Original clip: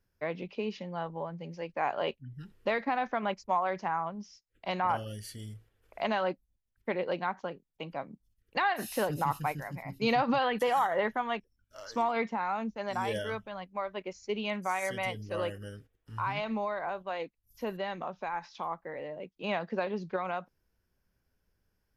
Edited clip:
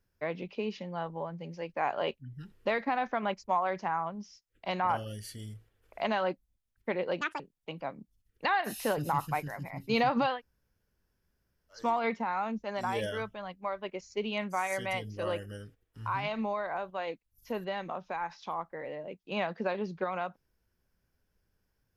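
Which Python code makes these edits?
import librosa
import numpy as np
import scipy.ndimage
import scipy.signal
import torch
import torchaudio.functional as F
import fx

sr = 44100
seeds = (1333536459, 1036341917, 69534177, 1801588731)

y = fx.edit(x, sr, fx.speed_span(start_s=7.21, length_s=0.31, speed=1.65),
    fx.room_tone_fill(start_s=10.46, length_s=1.43, crossfade_s=0.16), tone=tone)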